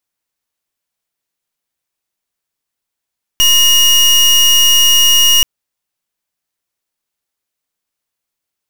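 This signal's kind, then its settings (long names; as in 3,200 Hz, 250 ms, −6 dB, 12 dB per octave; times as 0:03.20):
pulse wave 2,870 Hz, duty 29% −8.5 dBFS 2.03 s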